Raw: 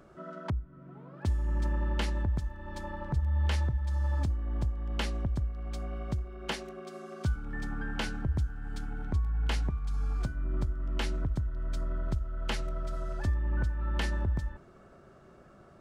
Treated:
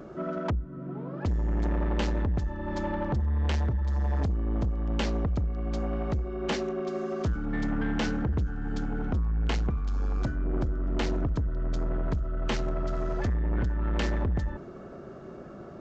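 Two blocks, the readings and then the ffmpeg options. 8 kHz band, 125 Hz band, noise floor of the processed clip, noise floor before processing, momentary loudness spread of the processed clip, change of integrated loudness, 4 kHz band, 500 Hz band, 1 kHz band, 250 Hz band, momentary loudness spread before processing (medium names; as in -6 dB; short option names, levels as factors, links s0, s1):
no reading, +2.5 dB, -43 dBFS, -56 dBFS, 5 LU, +3.5 dB, +1.0 dB, +9.5 dB, +5.0 dB, +8.5 dB, 9 LU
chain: -af "equalizer=f=310:t=o:w=2.6:g=9.5,aresample=16000,asoftclip=type=tanh:threshold=0.0355,aresample=44100,volume=1.88"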